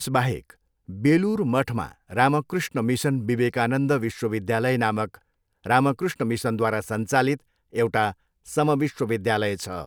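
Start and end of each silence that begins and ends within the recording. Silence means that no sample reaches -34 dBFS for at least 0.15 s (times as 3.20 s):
0.50–0.89 s
1.92–2.10 s
5.15–5.66 s
7.36–7.75 s
8.11–8.48 s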